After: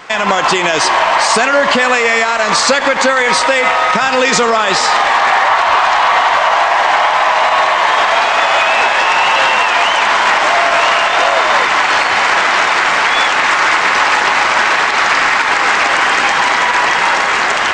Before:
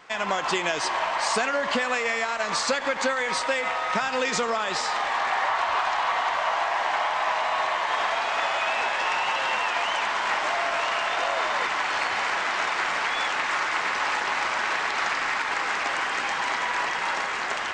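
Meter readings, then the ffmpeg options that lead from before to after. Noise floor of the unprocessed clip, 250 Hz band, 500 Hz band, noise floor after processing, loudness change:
-29 dBFS, +13.5 dB, +14.0 dB, -14 dBFS, +14.5 dB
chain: -af "alimiter=level_in=17dB:limit=-1dB:release=50:level=0:latency=1,volume=-1dB"

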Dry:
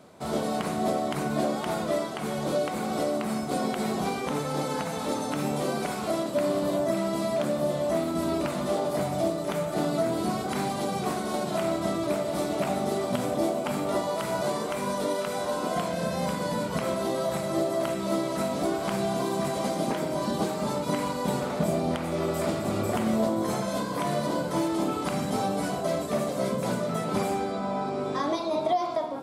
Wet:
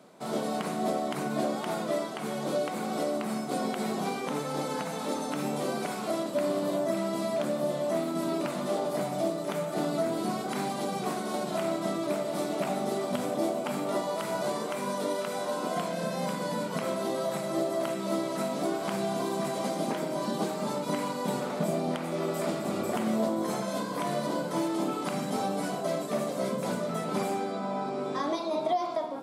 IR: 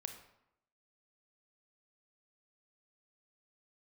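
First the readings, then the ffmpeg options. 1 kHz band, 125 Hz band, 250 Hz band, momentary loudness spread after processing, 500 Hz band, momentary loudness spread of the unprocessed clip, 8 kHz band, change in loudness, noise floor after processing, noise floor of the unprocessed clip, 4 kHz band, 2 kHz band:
-2.5 dB, -5.0 dB, -2.5 dB, 3 LU, -2.5 dB, 3 LU, -2.5 dB, -2.5 dB, -35 dBFS, -32 dBFS, -2.5 dB, -2.5 dB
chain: -af "highpass=f=150:w=0.5412,highpass=f=150:w=1.3066,volume=-2.5dB"

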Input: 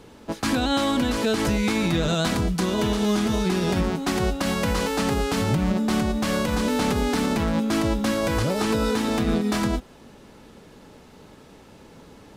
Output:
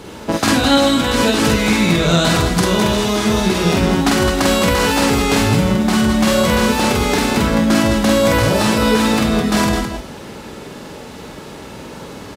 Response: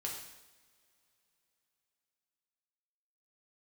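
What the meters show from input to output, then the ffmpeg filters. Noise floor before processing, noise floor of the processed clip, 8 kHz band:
-49 dBFS, -34 dBFS, +11.0 dB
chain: -filter_complex "[0:a]acontrast=43,highpass=43,acompressor=threshold=-20dB:ratio=6,aecho=1:1:46.65|209.9:0.891|0.501,asplit=2[a][b];[1:a]atrim=start_sample=2205,lowshelf=f=340:g=-12[c];[b][c]afir=irnorm=-1:irlink=0,volume=-4.5dB[d];[a][d]amix=inputs=2:normalize=0,volume=4.5dB"

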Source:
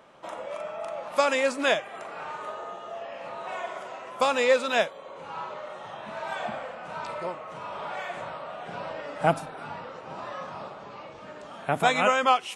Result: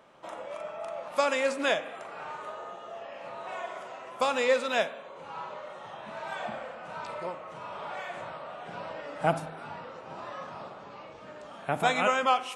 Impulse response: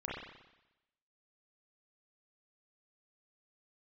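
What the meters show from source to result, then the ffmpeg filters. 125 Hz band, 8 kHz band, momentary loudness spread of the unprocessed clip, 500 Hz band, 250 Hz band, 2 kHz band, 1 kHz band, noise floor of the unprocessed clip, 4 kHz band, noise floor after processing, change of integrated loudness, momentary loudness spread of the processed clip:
-3.0 dB, -3.5 dB, 17 LU, -3.0 dB, -3.0 dB, -3.0 dB, -3.0 dB, -44 dBFS, -3.5 dB, -46 dBFS, -3.0 dB, 17 LU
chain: -filter_complex "[0:a]asplit=2[a][b];[1:a]atrim=start_sample=2205,afade=t=out:st=0.34:d=0.01,atrim=end_sample=15435,asetrate=42336,aresample=44100[c];[b][c]afir=irnorm=-1:irlink=0,volume=-13.5dB[d];[a][d]amix=inputs=2:normalize=0,volume=-4.5dB"

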